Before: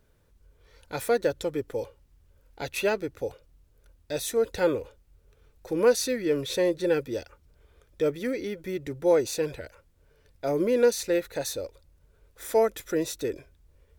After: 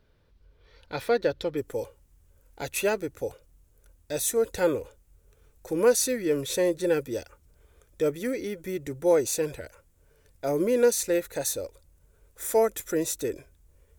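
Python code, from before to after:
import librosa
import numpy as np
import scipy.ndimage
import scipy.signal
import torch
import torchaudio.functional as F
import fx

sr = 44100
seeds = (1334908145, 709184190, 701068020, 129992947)

y = fx.high_shelf_res(x, sr, hz=5800.0, db=fx.steps((0.0, -8.5), (1.56, 6.0)), q=1.5)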